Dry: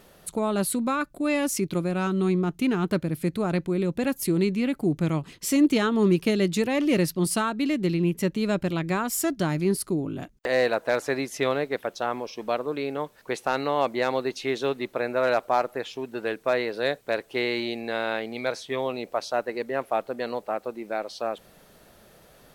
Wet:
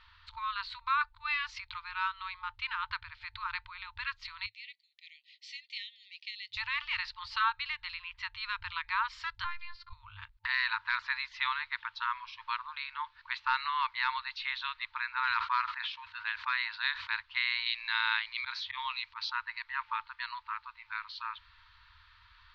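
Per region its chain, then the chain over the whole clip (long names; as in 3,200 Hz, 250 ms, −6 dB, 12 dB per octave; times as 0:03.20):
0:04.46–0:06.57: linear-phase brick-wall band-pass 1,800–12,000 Hz + first difference
0:09.44–0:09.93: high-shelf EQ 5,200 Hz −12 dB + phases set to zero 346 Hz
0:15.31–0:17.13: high-pass filter 340 Hz 6 dB per octave + log-companded quantiser 8 bits + level that may fall only so fast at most 81 dB per second
0:17.66–0:19.30: high-shelf EQ 2,500 Hz +8 dB + volume swells 101 ms
whole clip: brick-wall band-stop 100–890 Hz; elliptic low-pass filter 4,300 Hz, stop band 60 dB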